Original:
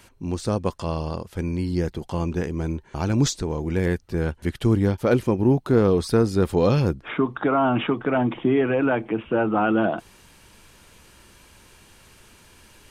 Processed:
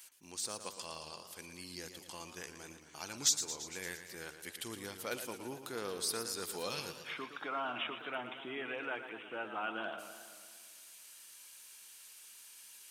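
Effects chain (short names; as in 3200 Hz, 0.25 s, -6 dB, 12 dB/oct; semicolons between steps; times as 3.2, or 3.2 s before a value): differentiator; warbling echo 0.114 s, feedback 65%, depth 126 cents, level -10 dB; gain +1 dB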